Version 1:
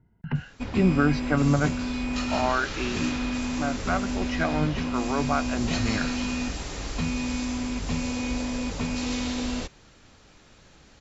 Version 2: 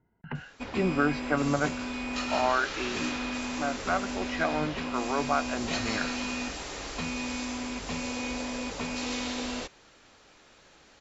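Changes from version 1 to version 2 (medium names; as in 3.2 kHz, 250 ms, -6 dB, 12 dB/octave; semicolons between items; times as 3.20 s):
speech: add treble shelf 4.5 kHz -9.5 dB; master: add tone controls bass -12 dB, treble -2 dB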